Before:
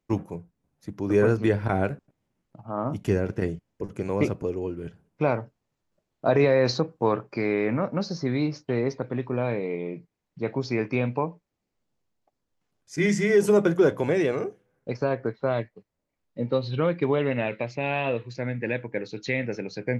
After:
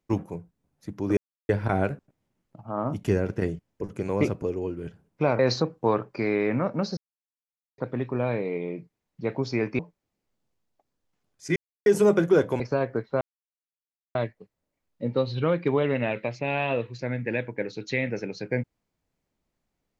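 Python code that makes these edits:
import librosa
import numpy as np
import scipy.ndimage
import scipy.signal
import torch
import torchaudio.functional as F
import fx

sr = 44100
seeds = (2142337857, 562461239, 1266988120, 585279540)

y = fx.edit(x, sr, fx.silence(start_s=1.17, length_s=0.32),
    fx.cut(start_s=5.39, length_s=1.18),
    fx.silence(start_s=8.15, length_s=0.81),
    fx.cut(start_s=10.97, length_s=0.3),
    fx.silence(start_s=13.04, length_s=0.3),
    fx.cut(start_s=14.08, length_s=0.82),
    fx.insert_silence(at_s=15.51, length_s=0.94), tone=tone)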